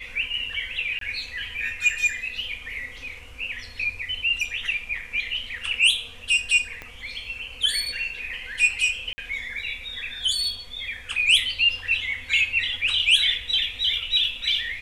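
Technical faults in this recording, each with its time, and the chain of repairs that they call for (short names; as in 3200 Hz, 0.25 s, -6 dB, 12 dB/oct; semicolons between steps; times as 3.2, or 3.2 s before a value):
0.99–1.01 gap 23 ms
6.82 pop -21 dBFS
9.13–9.18 gap 50 ms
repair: de-click; interpolate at 0.99, 23 ms; interpolate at 9.13, 50 ms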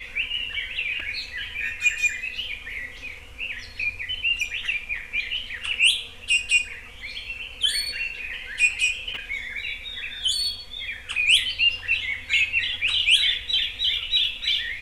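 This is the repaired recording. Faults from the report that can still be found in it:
6.82 pop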